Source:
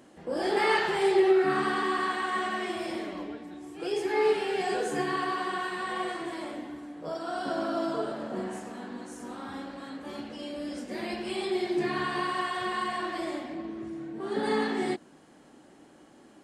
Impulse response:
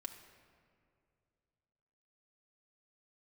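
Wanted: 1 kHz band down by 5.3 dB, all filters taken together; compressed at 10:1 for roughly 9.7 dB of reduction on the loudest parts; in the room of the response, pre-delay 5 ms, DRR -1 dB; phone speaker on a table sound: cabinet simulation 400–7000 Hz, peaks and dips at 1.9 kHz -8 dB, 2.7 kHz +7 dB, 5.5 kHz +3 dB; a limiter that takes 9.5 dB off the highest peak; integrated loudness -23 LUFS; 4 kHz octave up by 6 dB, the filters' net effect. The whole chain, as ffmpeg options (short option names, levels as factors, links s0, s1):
-filter_complex "[0:a]equalizer=f=1000:t=o:g=-7,equalizer=f=4000:t=o:g=5.5,acompressor=threshold=0.0355:ratio=10,alimiter=level_in=2.24:limit=0.0631:level=0:latency=1,volume=0.447,asplit=2[s0][s1];[1:a]atrim=start_sample=2205,adelay=5[s2];[s1][s2]afir=irnorm=-1:irlink=0,volume=1.78[s3];[s0][s3]amix=inputs=2:normalize=0,highpass=f=400:w=0.5412,highpass=f=400:w=1.3066,equalizer=f=1900:t=q:w=4:g=-8,equalizer=f=2700:t=q:w=4:g=7,equalizer=f=5500:t=q:w=4:g=3,lowpass=f=7000:w=0.5412,lowpass=f=7000:w=1.3066,volume=5.31"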